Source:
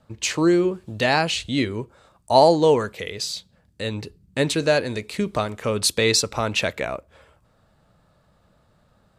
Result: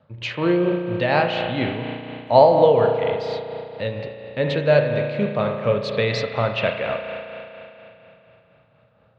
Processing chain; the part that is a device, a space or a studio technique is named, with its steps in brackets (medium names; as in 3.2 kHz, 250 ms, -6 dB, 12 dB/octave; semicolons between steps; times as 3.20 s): combo amplifier with spring reverb and tremolo (spring tank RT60 3.1 s, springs 34 ms, chirp 45 ms, DRR 2.5 dB; tremolo 4.2 Hz, depth 40%; cabinet simulation 94–3500 Hz, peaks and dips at 120 Hz +8 dB, 320 Hz -5 dB, 550 Hz +7 dB)